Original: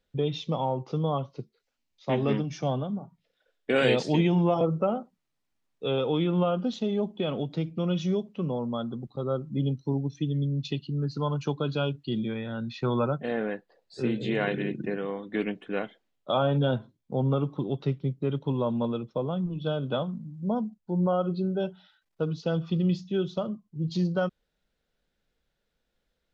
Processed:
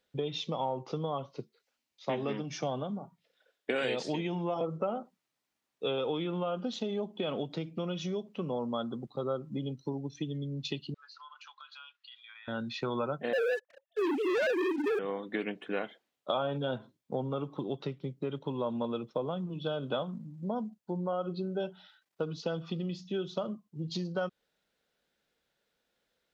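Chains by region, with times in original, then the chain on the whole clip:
10.94–12.48 steep high-pass 1100 Hz + air absorption 140 m + compressor 4:1, threshold -51 dBFS
13.33–14.99 sine-wave speech + sample leveller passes 3
whole clip: compressor, threshold -29 dBFS; HPF 340 Hz 6 dB/oct; gain +2.5 dB

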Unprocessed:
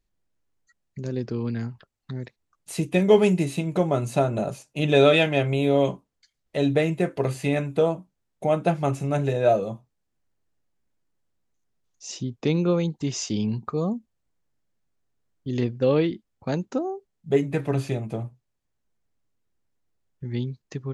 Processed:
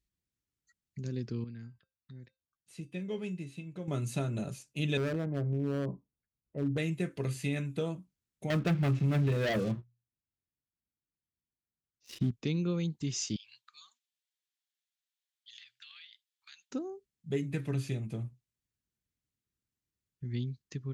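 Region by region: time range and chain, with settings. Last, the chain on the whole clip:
1.44–3.88 high shelf 6100 Hz -11.5 dB + resonator 520 Hz, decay 0.24 s, harmonics odd, mix 70%
4.97–6.78 LPF 1000 Hz 24 dB/oct + overloaded stage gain 16 dB
8.5–12.31 air absorption 300 m + notches 60/120/180 Hz + sample leveller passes 3
13.36–16.71 inverse Chebyshev high-pass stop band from 560 Hz, stop band 50 dB + bell 3500 Hz +7.5 dB 0.6 oct + compressor 10:1, threshold -42 dBFS
whole clip: HPF 46 Hz; bell 720 Hz -14.5 dB 1.7 oct; compressor 2:1, threshold -24 dBFS; gain -4 dB

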